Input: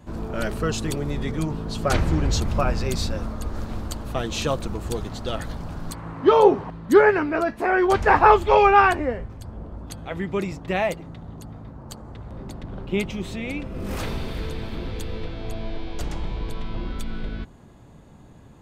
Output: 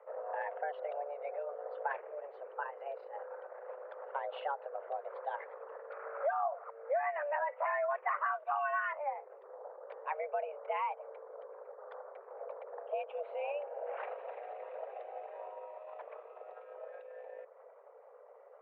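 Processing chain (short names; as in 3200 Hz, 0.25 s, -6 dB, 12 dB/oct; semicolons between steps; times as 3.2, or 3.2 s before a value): formant sharpening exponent 1.5; compressor 10:1, threshold -29 dBFS, peak gain reduction 20 dB; mistuned SSB +290 Hz 210–2200 Hz; gain -2 dB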